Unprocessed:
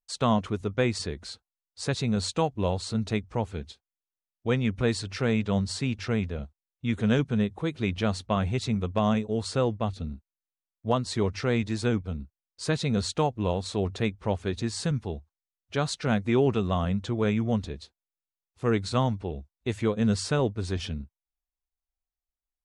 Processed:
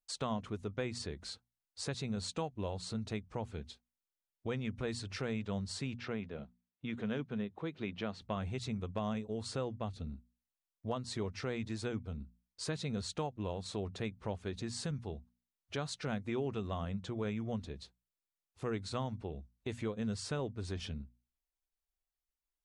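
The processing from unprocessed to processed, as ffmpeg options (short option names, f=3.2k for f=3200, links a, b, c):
-filter_complex "[0:a]asettb=1/sr,asplit=3[a][b][c];[a]atrim=end=5.974[d];[b]atrim=start=5.97:end=8.22,asetpts=PTS-STARTPTS,afade=t=in:d=0.004:c=qsin,afade=t=out:st=2.246:d=0.004:c=qsin,highpass=150,lowpass=4k[e];[c]atrim=start=8.216[f];[d][e]acrossfade=d=0.004:c1=hsin:c2=qsin[g];[g][f]acrossfade=d=0.004:c1=qsin:c2=hsin,bandreject=f=60:t=h:w=6,bandreject=f=120:t=h:w=6,bandreject=f=180:t=h:w=6,bandreject=f=240:t=h:w=6,acompressor=threshold=-39dB:ratio=2,volume=-2.5dB"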